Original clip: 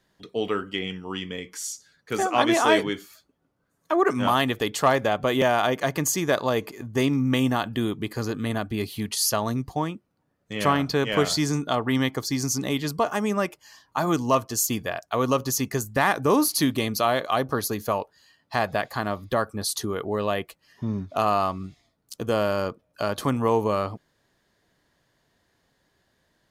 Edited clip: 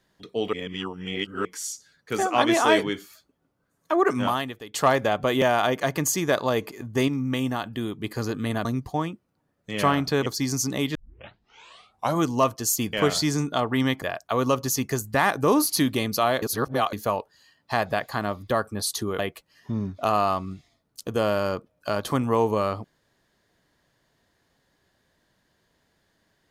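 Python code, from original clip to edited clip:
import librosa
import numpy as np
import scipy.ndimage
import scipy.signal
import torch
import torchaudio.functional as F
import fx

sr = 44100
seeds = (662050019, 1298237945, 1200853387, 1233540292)

y = fx.edit(x, sr, fx.reverse_span(start_s=0.53, length_s=0.92),
    fx.fade_out_to(start_s=4.2, length_s=0.54, curve='qua', floor_db=-16.0),
    fx.clip_gain(start_s=7.08, length_s=0.96, db=-4.0),
    fx.cut(start_s=8.65, length_s=0.82),
    fx.move(start_s=11.08, length_s=1.09, to_s=14.84),
    fx.tape_start(start_s=12.86, length_s=1.27),
    fx.reverse_span(start_s=17.24, length_s=0.51),
    fx.cut(start_s=20.01, length_s=0.31), tone=tone)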